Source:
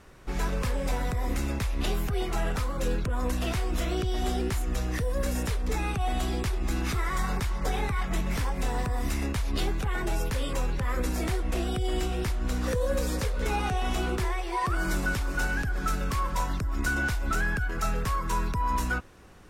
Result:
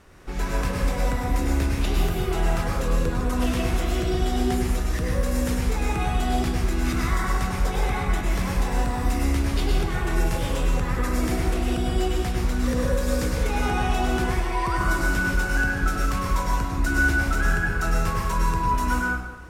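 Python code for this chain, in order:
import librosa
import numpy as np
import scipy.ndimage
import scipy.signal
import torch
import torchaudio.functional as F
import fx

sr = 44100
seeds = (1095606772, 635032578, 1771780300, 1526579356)

y = fx.rev_plate(x, sr, seeds[0], rt60_s=1.1, hf_ratio=0.7, predelay_ms=90, drr_db=-2.5)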